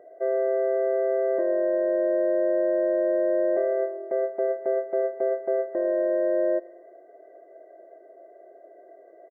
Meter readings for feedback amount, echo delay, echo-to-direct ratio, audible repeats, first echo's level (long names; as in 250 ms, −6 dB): 49%, 120 ms, −22.0 dB, 2, −23.0 dB